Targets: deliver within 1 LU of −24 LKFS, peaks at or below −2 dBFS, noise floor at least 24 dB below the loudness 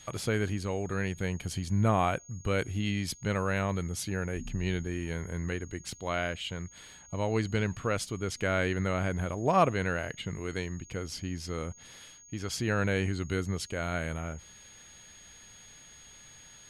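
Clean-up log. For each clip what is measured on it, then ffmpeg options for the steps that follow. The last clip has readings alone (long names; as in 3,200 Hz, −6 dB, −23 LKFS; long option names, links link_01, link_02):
interfering tone 6,600 Hz; level of the tone −52 dBFS; integrated loudness −32.0 LKFS; sample peak −12.0 dBFS; target loudness −24.0 LKFS
→ -af "bandreject=frequency=6600:width=30"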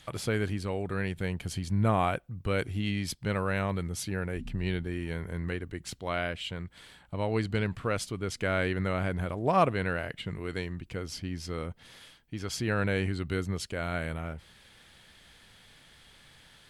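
interfering tone none found; integrated loudness −32.0 LKFS; sample peak −12.0 dBFS; target loudness −24.0 LKFS
→ -af "volume=8dB"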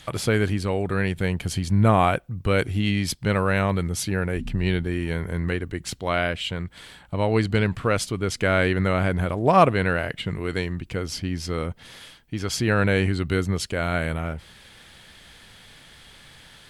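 integrated loudness −24.0 LKFS; sample peak −4.0 dBFS; background noise floor −50 dBFS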